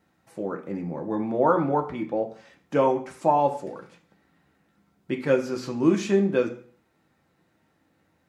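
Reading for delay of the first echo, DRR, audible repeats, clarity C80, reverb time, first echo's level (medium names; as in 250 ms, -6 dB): no echo, 2.0 dB, no echo, 15.5 dB, 0.50 s, no echo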